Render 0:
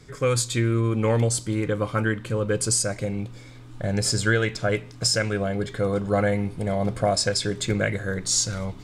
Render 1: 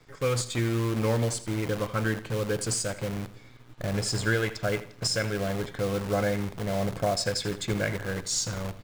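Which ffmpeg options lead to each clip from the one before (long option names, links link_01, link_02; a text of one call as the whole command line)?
ffmpeg -i in.wav -filter_complex "[0:a]acrossover=split=820[link_01][link_02];[link_01]acrusher=bits=6:dc=4:mix=0:aa=0.000001[link_03];[link_02]adynamicsmooth=sensitivity=7.5:basefreq=5100[link_04];[link_03][link_04]amix=inputs=2:normalize=0,aecho=1:1:82|164|246:0.178|0.0622|0.0218,volume=-4.5dB" out.wav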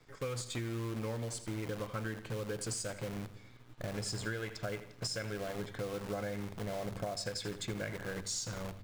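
ffmpeg -i in.wav -af "bandreject=frequency=49.07:width_type=h:width=4,bandreject=frequency=98.14:width_type=h:width=4,bandreject=frequency=147.21:width_type=h:width=4,bandreject=frequency=196.28:width_type=h:width=4,acompressor=threshold=-29dB:ratio=6,volume=-5.5dB" out.wav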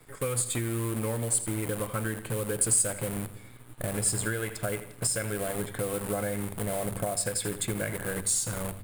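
ffmpeg -i in.wav -af "highshelf=frequency=7400:width_type=q:width=3:gain=9.5,volume=7dB" out.wav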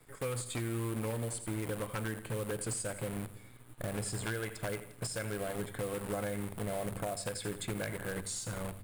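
ffmpeg -i in.wav -filter_complex "[0:a]acrossover=split=6100[link_01][link_02];[link_02]acompressor=threshold=-39dB:ratio=4:attack=1:release=60[link_03];[link_01][link_03]amix=inputs=2:normalize=0,aeval=exprs='0.15*(cos(1*acos(clip(val(0)/0.15,-1,1)))-cos(1*PI/2))+0.0237*(cos(3*acos(clip(val(0)/0.15,-1,1)))-cos(3*PI/2))':channel_layout=same,aeval=exprs='0.0422*(abs(mod(val(0)/0.0422+3,4)-2)-1)':channel_layout=same" out.wav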